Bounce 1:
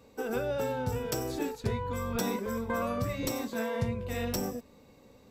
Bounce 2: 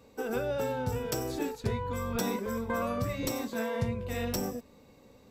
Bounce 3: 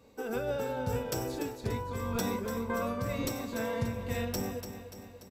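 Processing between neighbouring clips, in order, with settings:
no processing that can be heard
repeating echo 291 ms, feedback 55%, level −10 dB; amplitude modulation by smooth noise, depth 50%

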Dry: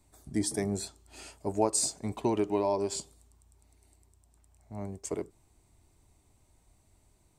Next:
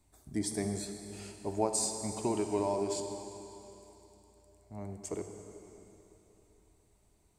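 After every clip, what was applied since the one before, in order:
convolution reverb RT60 3.4 s, pre-delay 33 ms, DRR 5.5 dB
level −4 dB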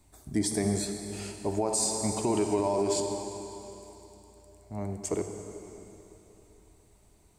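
brickwall limiter −25 dBFS, peak gain reduction 9 dB
level +7.5 dB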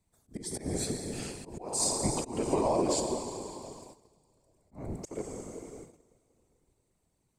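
noise gate −47 dBFS, range −14 dB
volume swells 266 ms
random phases in short frames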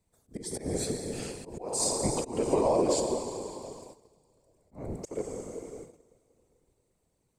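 parametric band 490 Hz +6 dB 0.55 octaves

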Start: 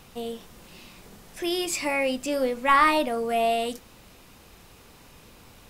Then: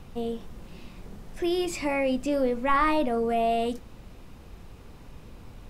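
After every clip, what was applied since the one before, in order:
spectral tilt −2.5 dB per octave
in parallel at 0 dB: brickwall limiter −18.5 dBFS, peak gain reduction 11.5 dB
on the sum: level −7 dB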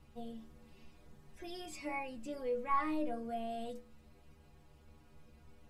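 stiff-string resonator 72 Hz, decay 0.38 s, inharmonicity 0.008
level −5 dB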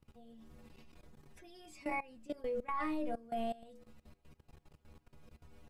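output level in coarse steps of 20 dB
level +4.5 dB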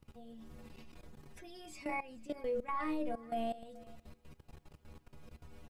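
brickwall limiter −33.5 dBFS, peak gain reduction 7 dB
single-tap delay 432 ms −22 dB
level +4.5 dB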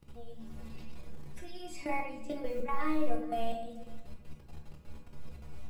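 noise that follows the level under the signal 35 dB
rectangular room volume 150 cubic metres, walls mixed, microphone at 0.77 metres
level +2 dB

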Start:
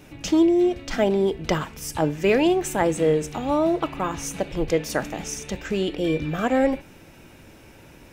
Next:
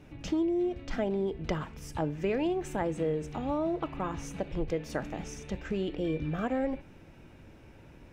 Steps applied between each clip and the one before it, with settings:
low-pass filter 2,600 Hz 6 dB per octave
low-shelf EQ 170 Hz +6 dB
downward compressor 2.5 to 1, threshold −21 dBFS, peak gain reduction 6 dB
level −7 dB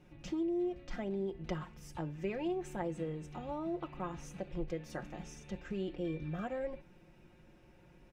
comb filter 5.6 ms, depth 60%
level −9 dB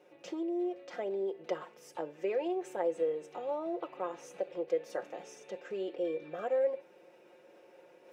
reversed playback
upward compression, threshold −52 dBFS
reversed playback
high-pass with resonance 480 Hz, resonance Q 3.5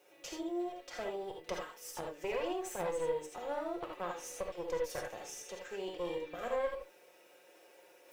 RIAA equalisation recording
tube saturation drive 31 dB, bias 0.75
reverb whose tail is shaped and stops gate 100 ms rising, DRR 1.5 dB
level +1.5 dB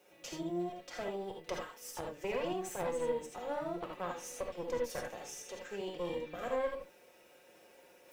sub-octave generator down 1 octave, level −5 dB

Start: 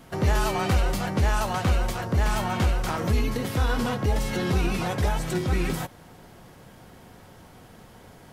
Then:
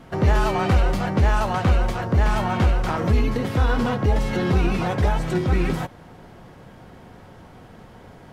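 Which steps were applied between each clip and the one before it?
low-pass filter 2,400 Hz 6 dB per octave
level +4.5 dB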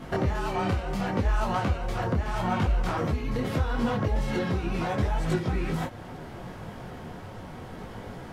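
downward compressor 10 to 1, threshold −28 dBFS, peak gain reduction 15 dB
micro pitch shift up and down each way 26 cents
level +8 dB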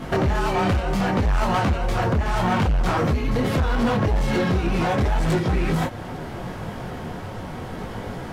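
hard clipping −24.5 dBFS, distortion −12 dB
level +8 dB

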